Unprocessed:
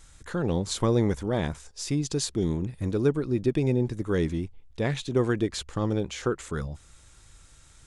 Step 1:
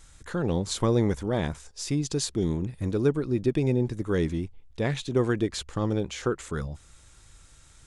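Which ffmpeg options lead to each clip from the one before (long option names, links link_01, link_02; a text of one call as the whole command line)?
ffmpeg -i in.wav -af anull out.wav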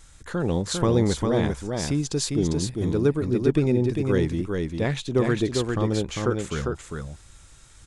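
ffmpeg -i in.wav -af "aecho=1:1:400:0.631,volume=2dB" out.wav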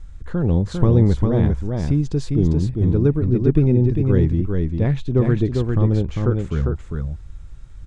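ffmpeg -i in.wav -af "aemphasis=mode=reproduction:type=riaa,volume=-2.5dB" out.wav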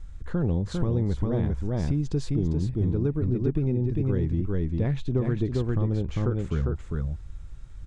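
ffmpeg -i in.wav -af "acompressor=threshold=-18dB:ratio=6,volume=-3dB" out.wav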